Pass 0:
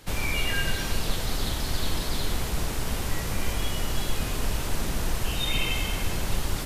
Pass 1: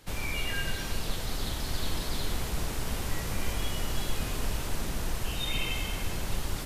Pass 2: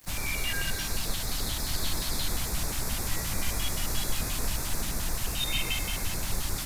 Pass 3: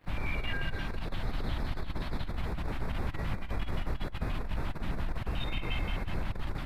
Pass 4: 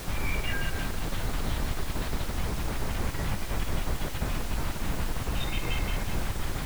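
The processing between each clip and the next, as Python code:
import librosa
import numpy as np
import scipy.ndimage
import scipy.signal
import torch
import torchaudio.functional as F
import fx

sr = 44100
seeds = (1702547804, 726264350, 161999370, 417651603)

y1 = fx.rider(x, sr, range_db=10, speed_s=2.0)
y1 = y1 * librosa.db_to_amplitude(-4.5)
y2 = fx.high_shelf(y1, sr, hz=2700.0, db=8.0)
y2 = fx.filter_lfo_notch(y2, sr, shape='square', hz=5.7, low_hz=440.0, high_hz=3000.0, q=1.4)
y2 = fx.quant_dither(y2, sr, seeds[0], bits=8, dither='none')
y3 = fx.air_absorb(y2, sr, metres=500.0)
y3 = fx.over_compress(y3, sr, threshold_db=-30.0, ratio=-0.5)
y4 = fx.dmg_noise_colour(y3, sr, seeds[1], colour='pink', level_db=-42.0)
y4 = y4 * librosa.db_to_amplitude(3.0)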